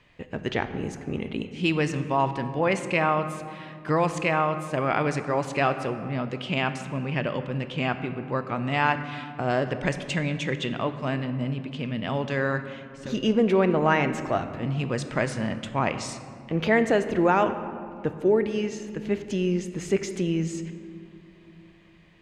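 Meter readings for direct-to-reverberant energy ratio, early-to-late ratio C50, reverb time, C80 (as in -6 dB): 9.0 dB, 10.5 dB, 2.5 s, 11.5 dB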